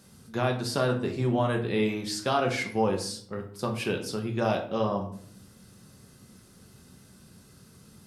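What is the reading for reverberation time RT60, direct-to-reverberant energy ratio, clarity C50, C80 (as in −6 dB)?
0.55 s, 2.0 dB, 9.0 dB, 12.5 dB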